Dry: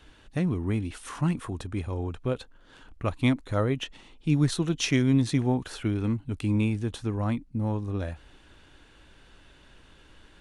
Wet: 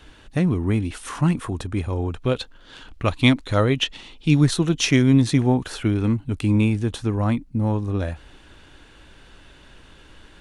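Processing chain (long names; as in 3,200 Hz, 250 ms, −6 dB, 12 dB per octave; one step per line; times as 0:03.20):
0:02.22–0:04.41: parametric band 3,800 Hz +7.5 dB 1.6 octaves
level +6.5 dB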